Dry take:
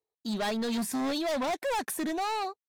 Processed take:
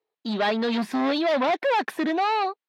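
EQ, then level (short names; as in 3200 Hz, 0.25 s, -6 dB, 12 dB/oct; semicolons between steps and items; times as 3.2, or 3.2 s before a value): HPF 240 Hz 12 dB/oct; air absorption 350 m; high shelf 2400 Hz +8.5 dB; +8.5 dB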